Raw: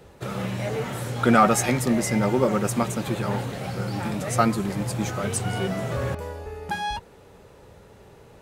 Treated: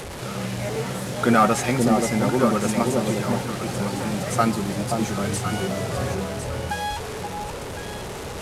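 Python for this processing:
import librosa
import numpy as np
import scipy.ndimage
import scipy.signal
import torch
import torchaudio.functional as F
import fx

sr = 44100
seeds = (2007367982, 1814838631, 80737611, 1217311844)

y = fx.delta_mod(x, sr, bps=64000, step_db=-28.5)
y = fx.echo_alternate(y, sr, ms=528, hz=960.0, feedback_pct=52, wet_db=-3.0)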